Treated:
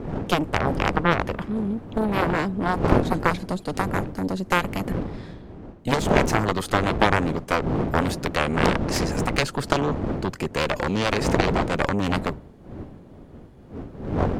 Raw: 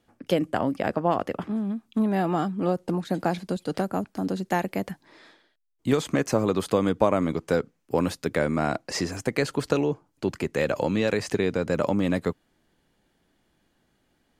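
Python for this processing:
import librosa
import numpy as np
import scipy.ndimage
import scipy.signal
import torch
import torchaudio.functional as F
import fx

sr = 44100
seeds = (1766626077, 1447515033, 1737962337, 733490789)

y = fx.dmg_wind(x, sr, seeds[0], corner_hz=290.0, level_db=-29.0)
y = fx.cheby_harmonics(y, sr, harmonics=(3, 6, 7), levels_db=(-17, -14, -12), full_scale_db=-5.0)
y = y * 10.0 ** (1.5 / 20.0)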